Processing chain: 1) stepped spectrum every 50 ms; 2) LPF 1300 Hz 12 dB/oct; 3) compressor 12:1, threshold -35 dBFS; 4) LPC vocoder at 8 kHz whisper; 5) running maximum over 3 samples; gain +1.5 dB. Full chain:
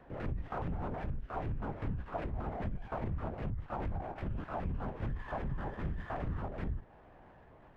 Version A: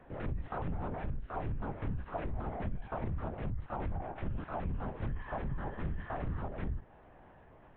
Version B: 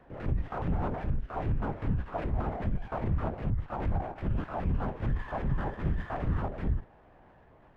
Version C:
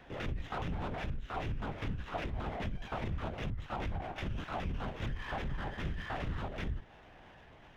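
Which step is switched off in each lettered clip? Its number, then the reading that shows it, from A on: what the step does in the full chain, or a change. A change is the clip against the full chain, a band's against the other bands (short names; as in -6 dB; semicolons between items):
5, distortion -8 dB; 3, mean gain reduction 4.5 dB; 2, 2 kHz band +6.0 dB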